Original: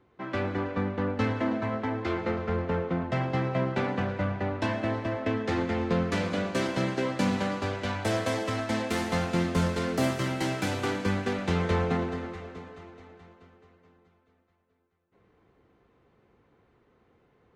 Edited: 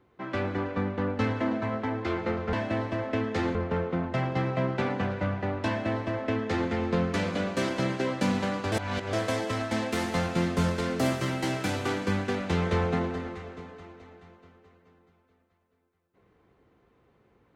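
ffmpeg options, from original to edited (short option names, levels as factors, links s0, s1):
-filter_complex "[0:a]asplit=5[s0][s1][s2][s3][s4];[s0]atrim=end=2.532[s5];[s1]atrim=start=4.658:end=5.682[s6];[s2]atrim=start=2.528:end=7.702[s7];[s3]atrim=start=7.698:end=8.112,asetpts=PTS-STARTPTS,areverse[s8];[s4]atrim=start=8.108[s9];[s5][s6]acrossfade=d=0.004:c1=hsin:c2=hsin[s10];[s10][s7]acrossfade=d=0.004:c1=hsin:c2=hsin[s11];[s11][s8]acrossfade=d=0.004:c1=hsin:c2=hsin[s12];[s12][s9]acrossfade=d=0.004:c1=hsin:c2=hsin"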